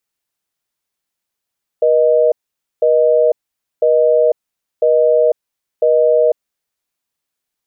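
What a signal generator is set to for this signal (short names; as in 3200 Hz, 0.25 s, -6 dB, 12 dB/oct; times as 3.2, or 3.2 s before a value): call progress tone busy tone, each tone -11.5 dBFS 4.92 s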